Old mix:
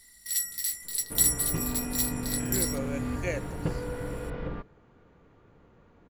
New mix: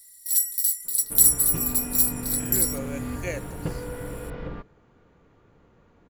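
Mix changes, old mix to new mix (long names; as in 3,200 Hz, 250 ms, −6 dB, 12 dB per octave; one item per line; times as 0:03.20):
first sound: add first-order pre-emphasis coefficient 0.8
master: add high-shelf EQ 6,600 Hz +7.5 dB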